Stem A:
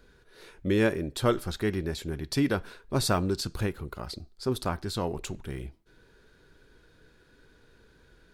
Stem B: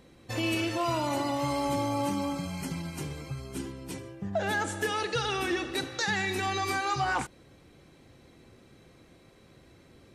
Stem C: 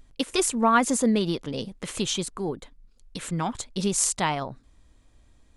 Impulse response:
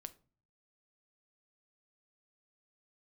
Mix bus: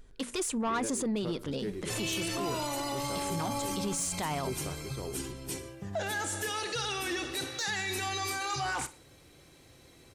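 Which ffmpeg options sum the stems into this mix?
-filter_complex "[0:a]equalizer=frequency=390:width=1.5:gain=9,volume=-15dB,asplit=2[link_01][link_02];[link_02]volume=-15dB[link_03];[1:a]equalizer=frequency=210:width_type=o:width=0.53:gain=-6.5,acontrast=39,highshelf=frequency=4100:gain=12,adelay=1600,volume=-7dB,asplit=2[link_04][link_05];[link_05]volume=-18.5dB[link_06];[2:a]bandreject=frequency=60:width_type=h:width=6,bandreject=frequency=120:width_type=h:width=6,bandreject=frequency=180:width_type=h:width=6,bandreject=frequency=240:width_type=h:width=6,volume=-2dB,asplit=2[link_07][link_08];[link_08]volume=-13dB[link_09];[3:a]atrim=start_sample=2205[link_10];[link_09][link_10]afir=irnorm=-1:irlink=0[link_11];[link_03][link_06]amix=inputs=2:normalize=0,aecho=0:1:61|122|183|244:1|0.3|0.09|0.027[link_12];[link_01][link_04][link_07][link_11][link_12]amix=inputs=5:normalize=0,asoftclip=type=tanh:threshold=-19dB,alimiter=level_in=2dB:limit=-24dB:level=0:latency=1:release=13,volume=-2dB"

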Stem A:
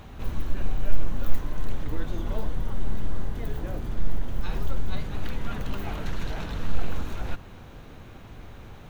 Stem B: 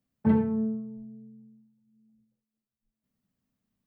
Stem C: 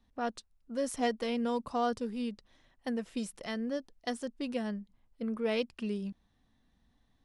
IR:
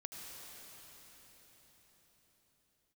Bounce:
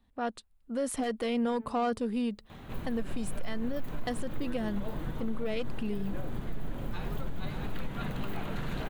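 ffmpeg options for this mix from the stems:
-filter_complex "[0:a]lowshelf=frequency=100:width_type=q:width=1.5:gain=-6.5,adelay=2500,volume=-2dB,asplit=2[link_01][link_02];[link_02]volume=-6dB[link_03];[1:a]aemphasis=mode=production:type=riaa,alimiter=level_in=3.5dB:limit=-24dB:level=0:latency=1:release=86,volume=-3.5dB,adelay=1200,volume=-12.5dB[link_04];[2:a]dynaudnorm=framelen=110:gausssize=13:maxgain=6dB,aeval=exprs='0.299*(cos(1*acos(clip(val(0)/0.299,-1,1)))-cos(1*PI/2))+0.0531*(cos(5*acos(clip(val(0)/0.299,-1,1)))-cos(5*PI/2))':channel_layout=same,volume=-4dB[link_05];[link_03]aecho=0:1:575|1150|1725|2300|2875:1|0.39|0.152|0.0593|0.0231[link_06];[link_01][link_04][link_05][link_06]amix=inputs=4:normalize=0,equalizer=frequency=5700:width_type=o:width=0.51:gain=-9,alimiter=limit=-23.5dB:level=0:latency=1:release=144"

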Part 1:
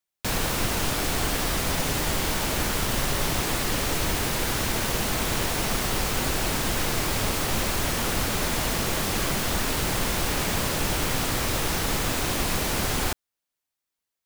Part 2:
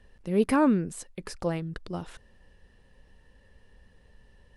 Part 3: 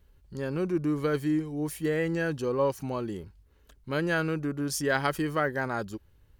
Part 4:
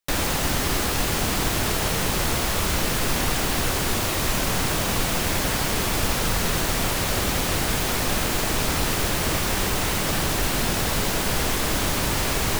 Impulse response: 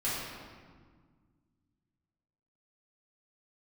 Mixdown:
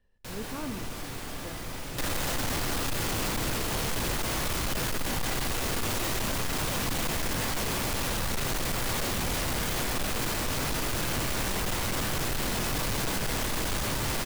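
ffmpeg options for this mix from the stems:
-filter_complex "[0:a]volume=-17.5dB,asplit=2[link_01][link_02];[link_02]volume=-4.5dB[link_03];[1:a]volume=-15.5dB,asplit=2[link_04][link_05];[link_05]volume=-17.5dB[link_06];[3:a]alimiter=limit=-19.5dB:level=0:latency=1:release=209,adelay=1900,volume=2dB,asplit=2[link_07][link_08];[link_08]volume=-12dB[link_09];[4:a]atrim=start_sample=2205[link_10];[link_03][link_06][link_09]amix=inputs=3:normalize=0[link_11];[link_11][link_10]afir=irnorm=-1:irlink=0[link_12];[link_01][link_04][link_07][link_12]amix=inputs=4:normalize=0,asoftclip=type=tanh:threshold=-25.5dB"

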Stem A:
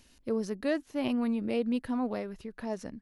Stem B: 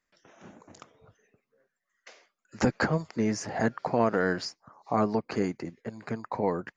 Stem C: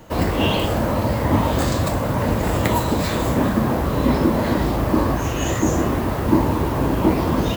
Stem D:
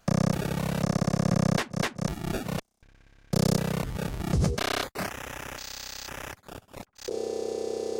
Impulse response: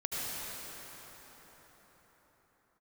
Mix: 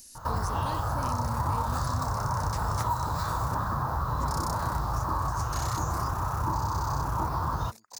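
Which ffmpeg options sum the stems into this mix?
-filter_complex "[0:a]acontrast=54,volume=-8dB[link_01];[1:a]aeval=exprs='0.0841*(abs(mod(val(0)/0.0841+3,4)-2)-1)':channel_layout=same,adelay=1600,volume=-19dB[link_02];[2:a]firequalizer=gain_entry='entry(130,0);entry(220,-17);entry(590,-10);entry(890,4);entry(1300,6);entry(2100,-17);entry(3700,-14);entry(8100,-28)':delay=0.05:min_phase=1,adelay=150,volume=3dB[link_03];[3:a]equalizer=frequency=2000:width=0.32:gain=10,adelay=950,volume=-18dB[link_04];[link_01][link_02][link_03][link_04]amix=inputs=4:normalize=0,aexciter=amount=10.7:drive=2.7:freq=4500,acompressor=threshold=-31dB:ratio=2.5"

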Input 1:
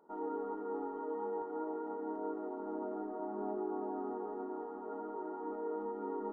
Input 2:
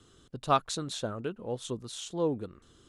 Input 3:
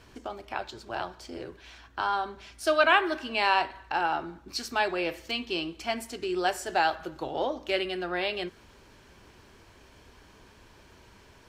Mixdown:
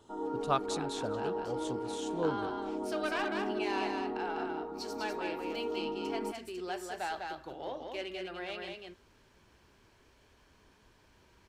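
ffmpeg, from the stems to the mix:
ffmpeg -i stem1.wav -i stem2.wav -i stem3.wav -filter_complex "[0:a]lowshelf=frequency=170:gain=11,volume=1dB[link_01];[1:a]volume=-5dB,asplit=2[link_02][link_03];[link_03]volume=-23.5dB[link_04];[2:a]asoftclip=type=tanh:threshold=-18dB,adelay=250,volume=-10.5dB,asplit=2[link_05][link_06];[link_06]volume=-4dB[link_07];[link_04][link_07]amix=inputs=2:normalize=0,aecho=0:1:199:1[link_08];[link_01][link_02][link_05][link_08]amix=inputs=4:normalize=0" out.wav

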